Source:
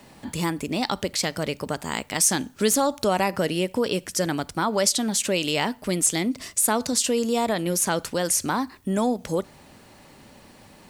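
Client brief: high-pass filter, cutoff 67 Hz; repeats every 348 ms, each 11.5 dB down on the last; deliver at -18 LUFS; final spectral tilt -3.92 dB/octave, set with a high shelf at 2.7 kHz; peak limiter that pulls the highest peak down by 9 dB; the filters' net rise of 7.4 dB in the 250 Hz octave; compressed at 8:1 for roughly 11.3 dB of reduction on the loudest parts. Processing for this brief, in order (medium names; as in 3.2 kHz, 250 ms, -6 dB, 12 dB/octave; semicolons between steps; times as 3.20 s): high-pass 67 Hz; peaking EQ 250 Hz +9 dB; treble shelf 2.7 kHz +4.5 dB; compression 8:1, threshold -24 dBFS; peak limiter -20 dBFS; feedback delay 348 ms, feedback 27%, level -11.5 dB; trim +12 dB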